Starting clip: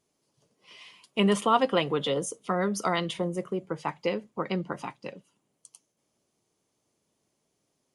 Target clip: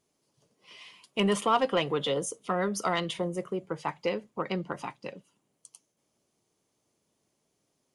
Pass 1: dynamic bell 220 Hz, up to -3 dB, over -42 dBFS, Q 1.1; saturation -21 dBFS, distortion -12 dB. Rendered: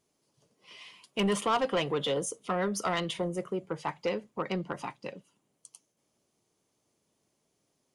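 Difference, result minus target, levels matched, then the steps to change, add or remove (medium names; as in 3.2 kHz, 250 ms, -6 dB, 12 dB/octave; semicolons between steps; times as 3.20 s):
saturation: distortion +8 dB
change: saturation -14.5 dBFS, distortion -20 dB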